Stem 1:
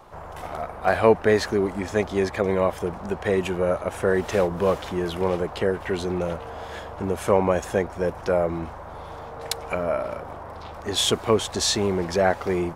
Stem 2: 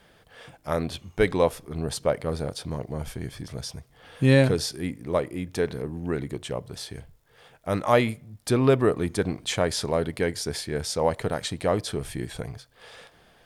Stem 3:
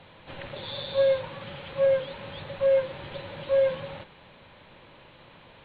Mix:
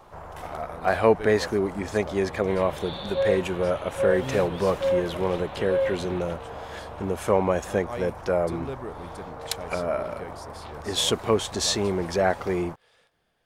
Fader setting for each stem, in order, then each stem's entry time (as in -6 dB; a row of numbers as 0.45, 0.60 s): -2.0, -15.5, -2.0 dB; 0.00, 0.00, 2.20 s